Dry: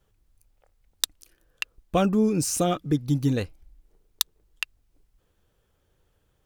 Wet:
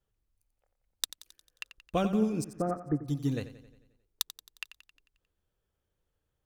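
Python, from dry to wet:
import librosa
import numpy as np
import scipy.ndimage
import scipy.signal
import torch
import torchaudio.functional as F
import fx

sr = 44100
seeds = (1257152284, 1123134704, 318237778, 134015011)

y = fx.steep_lowpass(x, sr, hz=1900.0, slope=72, at=(2.44, 3.06))
y = fx.echo_feedback(y, sr, ms=89, feedback_pct=57, wet_db=-10.0)
y = fx.upward_expand(y, sr, threshold_db=-34.0, expansion=1.5)
y = F.gain(torch.from_numpy(y), -5.5).numpy()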